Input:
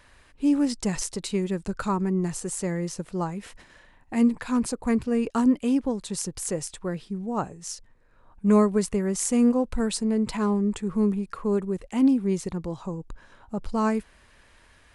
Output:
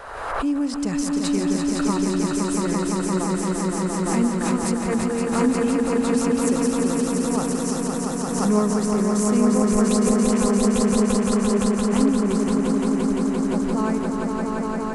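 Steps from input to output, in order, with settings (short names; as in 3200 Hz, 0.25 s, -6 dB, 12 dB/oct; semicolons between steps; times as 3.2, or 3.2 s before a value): band noise 450–1500 Hz -47 dBFS; on a send: swelling echo 0.172 s, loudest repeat 5, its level -4 dB; on the sum: backwards sustainer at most 41 dB/s; gain -2 dB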